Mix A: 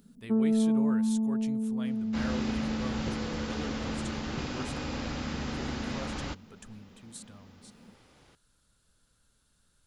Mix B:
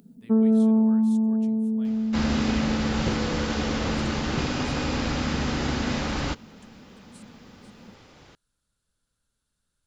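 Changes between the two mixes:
speech −9.0 dB
first sound +6.0 dB
second sound +8.5 dB

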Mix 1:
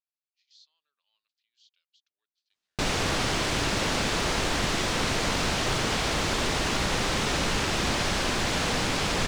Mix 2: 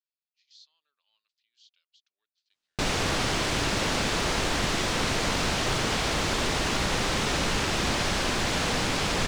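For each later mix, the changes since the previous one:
speech +3.0 dB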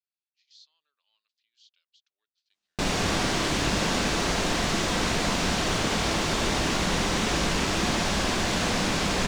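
reverb: on, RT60 1.1 s

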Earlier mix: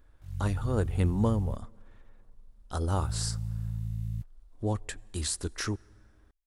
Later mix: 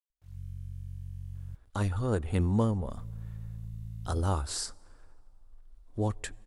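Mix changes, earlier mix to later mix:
speech: entry +1.35 s
background −7.0 dB

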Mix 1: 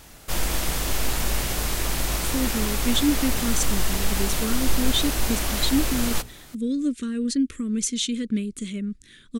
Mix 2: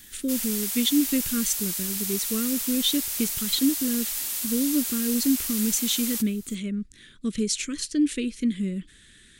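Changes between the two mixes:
speech: entry −2.10 s
background: add first difference

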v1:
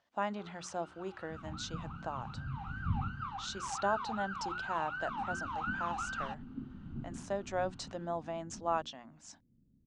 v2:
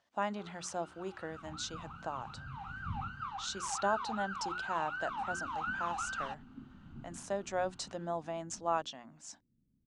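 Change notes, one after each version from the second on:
second sound −7.0 dB
master: remove high-frequency loss of the air 54 metres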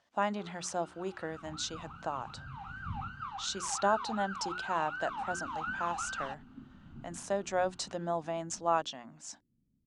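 speech +3.5 dB

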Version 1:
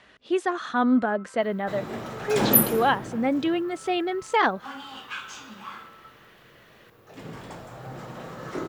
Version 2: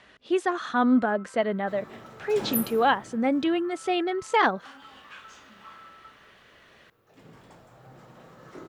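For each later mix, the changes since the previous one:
second sound −11.5 dB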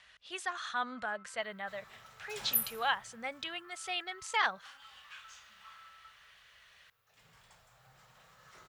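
master: add guitar amp tone stack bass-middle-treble 10-0-10

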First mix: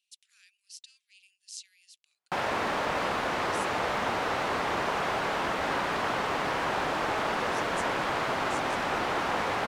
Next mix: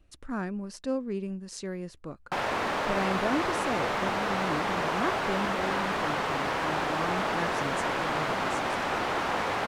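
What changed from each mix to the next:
speech: remove Butterworth high-pass 2,700 Hz 36 dB per octave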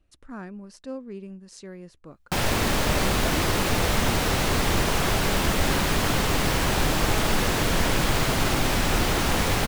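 speech −5.0 dB
background: remove resonant band-pass 970 Hz, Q 0.81

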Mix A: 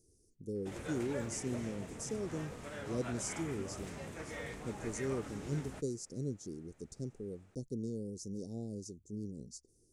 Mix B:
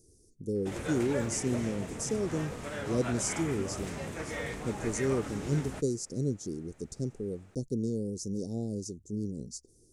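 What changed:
speech +7.5 dB
background +7.0 dB

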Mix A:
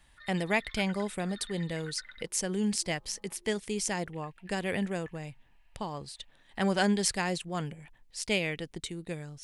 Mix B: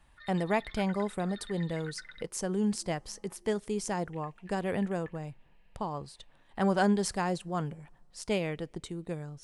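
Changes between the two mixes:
speech: add high shelf with overshoot 1,600 Hz −7 dB, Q 1.5
reverb: on

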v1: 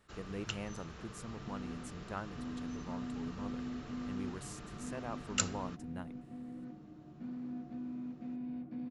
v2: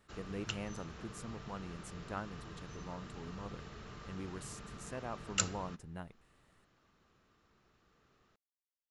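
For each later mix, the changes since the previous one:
second sound: muted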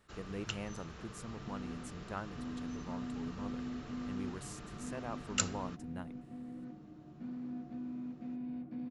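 second sound: unmuted

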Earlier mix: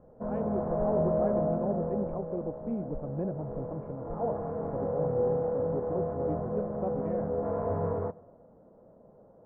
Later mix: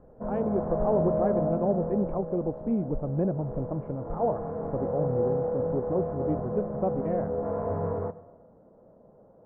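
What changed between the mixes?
speech +6.5 dB
background: send +6.5 dB

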